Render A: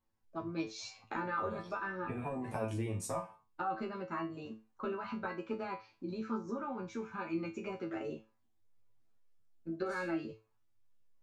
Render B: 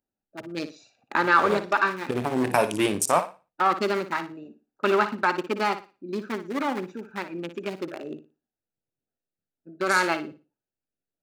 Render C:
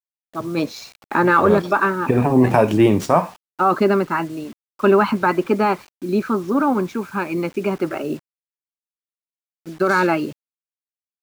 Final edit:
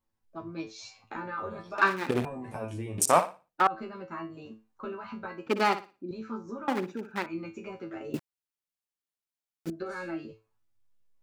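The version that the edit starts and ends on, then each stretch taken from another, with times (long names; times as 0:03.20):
A
0:01.78–0:02.25: punch in from B
0:02.98–0:03.67: punch in from B
0:05.47–0:06.11: punch in from B
0:06.68–0:07.26: punch in from B
0:08.14–0:09.70: punch in from C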